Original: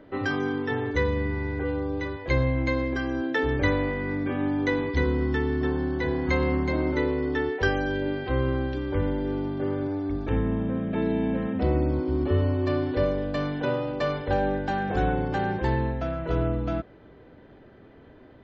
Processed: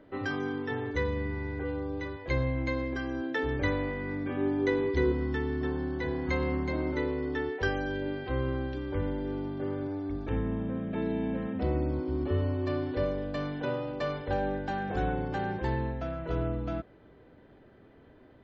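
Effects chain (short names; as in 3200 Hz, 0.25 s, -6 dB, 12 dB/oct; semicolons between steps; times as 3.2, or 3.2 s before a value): 4.37–5.12 bell 390 Hz +12 dB 0.31 oct; gain -5.5 dB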